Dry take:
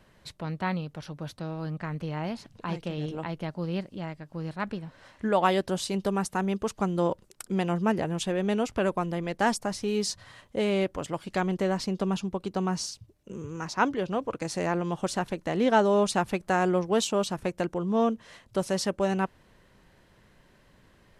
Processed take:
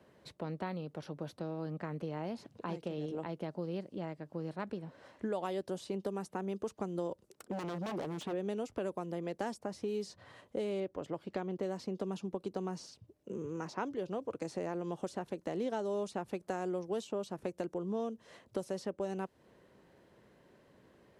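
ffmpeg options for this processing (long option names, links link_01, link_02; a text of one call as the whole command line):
ffmpeg -i in.wav -filter_complex "[0:a]asplit=3[link_01][link_02][link_03];[link_01]afade=type=out:start_time=7.27:duration=0.02[link_04];[link_02]aeval=exprs='0.0447*(abs(mod(val(0)/0.0447+3,4)-2)-1)':channel_layout=same,afade=type=in:start_time=7.27:duration=0.02,afade=type=out:start_time=8.32:duration=0.02[link_05];[link_03]afade=type=in:start_time=8.32:duration=0.02[link_06];[link_04][link_05][link_06]amix=inputs=3:normalize=0,asettb=1/sr,asplit=3[link_07][link_08][link_09];[link_07]atrim=end=10.804[link_10];[link_08]atrim=start=10.8:end=11.63,asetpts=PTS-STARTPTS,afade=type=in:duration=0.004:curve=qsin,afade=type=out:start_time=0.826:duration=0.004:curve=qsin,equalizer=frequency=9400:width_type=o:width=1.4:gain=-14[link_11];[link_09]atrim=start=11.626[link_12];[link_10][link_11]acrossfade=duration=0.004:curve1=hsin:curve2=qsin[link_13];[link_13][link_12]acrossfade=duration=0.004:curve1=qsin:curve2=hsin,highpass=69,equalizer=frequency=420:width=0.61:gain=10.5,acrossover=split=120|3900[link_14][link_15][link_16];[link_14]acompressor=threshold=-49dB:ratio=4[link_17];[link_15]acompressor=threshold=-27dB:ratio=4[link_18];[link_16]acompressor=threshold=-47dB:ratio=4[link_19];[link_17][link_18][link_19]amix=inputs=3:normalize=0,volume=-8.5dB" out.wav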